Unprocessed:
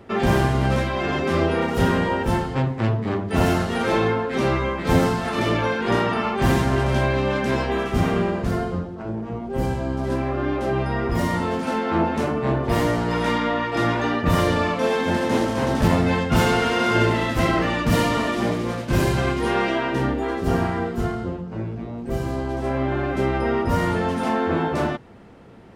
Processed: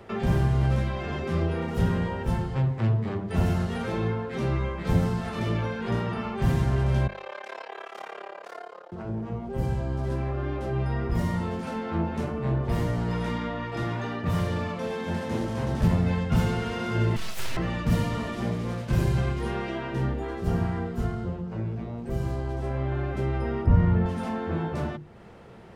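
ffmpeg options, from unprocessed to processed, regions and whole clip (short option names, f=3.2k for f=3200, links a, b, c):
-filter_complex "[0:a]asettb=1/sr,asplit=3[a][b][c];[a]atrim=end=7.074[d];[b]atrim=start=7.07:end=8.92,asetpts=PTS-STARTPTS,afade=t=in:d=0.004:c=qsin,afade=t=out:st=1.846:d=0.004:c=qsin,highpass=f=540:w=0.5412,highpass=f=540:w=1.3066,highshelf=f=7.2k:g=-11,tremolo=f=35:d=0.947[e];[c]atrim=start=8.916[f];[d][e]acrossfade=d=0.004:c1=hsin:c2=qsin[g];[g][f]acrossfade=d=0.004:c1=qsin:c2=hsin,asettb=1/sr,asplit=3[h][i][j];[h]atrim=end=13.824[k];[i]atrim=start=13.82:end=15.32,asetpts=PTS-STARTPTS,afade=t=in:d=0.004:c=qsin,afade=t=out:st=1.496:d=0.004:c=qsin,highpass=82,bandreject=f=60:t=h:w=6,bandreject=f=120:t=h:w=6,bandreject=f=180:t=h:w=6,bandreject=f=240:t=h:w=6,bandreject=f=300:t=h:w=6,bandreject=f=360:t=h:w=6,bandreject=f=420:t=h:w=6,bandreject=f=480:t=h:w=6,bandreject=f=540:t=h:w=6,asoftclip=type=hard:threshold=-15dB[l];[j]atrim=start=15.316[m];[k][l]acrossfade=d=0.004:c1=hsin:c2=qsin[n];[n][m]acrossfade=d=0.004:c1=qsin:c2=hsin,asettb=1/sr,asplit=3[o][p][q];[o]atrim=end=17.164[r];[p]atrim=start=17.16:end=17.57,asetpts=PTS-STARTPTS,afade=t=in:d=0.004:c=qsin,afade=t=out:st=0.406:d=0.004:c=qsin,highpass=f=590:w=0.5412,highpass=f=590:w=1.3066,highshelf=f=5.4k:g=12,aeval=exprs='abs(val(0))':c=same[s];[q]atrim=start=17.566[t];[r][s]acrossfade=d=0.004:c1=hsin:c2=qsin[u];[u][t]acrossfade=d=0.004:c1=qsin:c2=hsin,asettb=1/sr,asplit=3[v][w][x];[v]atrim=end=23.664[y];[w]atrim=start=23.66:end=24.06,asetpts=PTS-STARTPTS,afade=t=in:d=0.004:c=qsin,afade=t=out:st=0.396:d=0.004:c=qsin,lowpass=2.4k,lowshelf=f=200:g=9[z];[x]atrim=start=24.056[aa];[y][z]acrossfade=d=0.004:c1=hsin:c2=qsin[ab];[ab][aa]acrossfade=d=0.004:c1=qsin:c2=hsin,equalizer=f=270:t=o:w=0.28:g=-10,bandreject=f=50:t=h:w=6,bandreject=f=100:t=h:w=6,bandreject=f=150:t=h:w=6,bandreject=f=200:t=h:w=6,bandreject=f=250:t=h:w=6,bandreject=f=300:t=h:w=6,bandreject=f=350:t=h:w=6,acrossover=split=270[ac][ad];[ad]acompressor=threshold=-42dB:ratio=2[ae];[ac][ae]amix=inputs=2:normalize=0"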